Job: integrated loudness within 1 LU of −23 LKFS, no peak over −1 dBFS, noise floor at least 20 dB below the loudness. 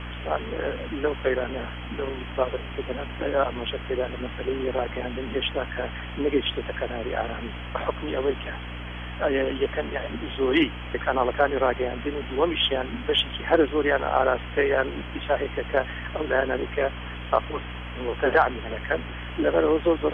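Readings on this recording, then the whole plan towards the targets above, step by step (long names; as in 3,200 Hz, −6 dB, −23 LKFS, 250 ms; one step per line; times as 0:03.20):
mains hum 60 Hz; hum harmonics up to 300 Hz; level of the hum −34 dBFS; background noise floor −35 dBFS; target noise floor −47 dBFS; integrated loudness −26.5 LKFS; sample peak −7.0 dBFS; target loudness −23.0 LKFS
→ mains-hum notches 60/120/180/240/300 Hz
broadband denoise 12 dB, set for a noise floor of −35 dBFS
level +3.5 dB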